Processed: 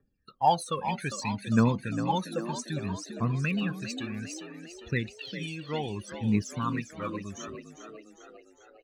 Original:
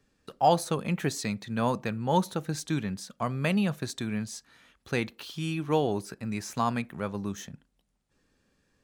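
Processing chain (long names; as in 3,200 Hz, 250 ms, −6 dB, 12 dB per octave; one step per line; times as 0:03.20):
noise reduction from a noise print of the clip's start 10 dB
spectral peaks only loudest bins 64
phase shifter 0.63 Hz, delay 1.9 ms, feedback 79%
on a send: echo with shifted repeats 402 ms, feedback 57%, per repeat +57 Hz, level −10 dB
on the sum: level −4 dB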